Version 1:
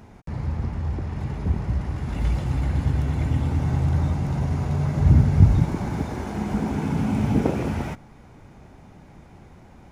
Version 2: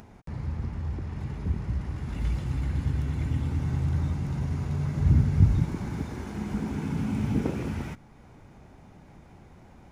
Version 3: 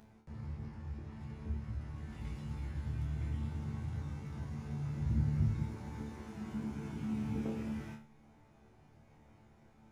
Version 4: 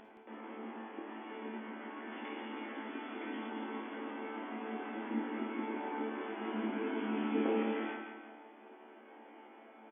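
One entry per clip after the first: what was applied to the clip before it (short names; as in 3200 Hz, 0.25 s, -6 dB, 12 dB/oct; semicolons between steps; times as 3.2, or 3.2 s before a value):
upward compressor, threshold -41 dBFS; dynamic EQ 680 Hz, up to -7 dB, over -44 dBFS, Q 1.4; gain -5 dB
resonator bank D2 fifth, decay 0.4 s; gain +1 dB
brick-wall FIR band-pass 230–3500 Hz; feedback echo 0.171 s, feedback 42%, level -7 dB; on a send at -8 dB: reverb RT60 0.50 s, pre-delay 42 ms; on the sum: gain +10 dB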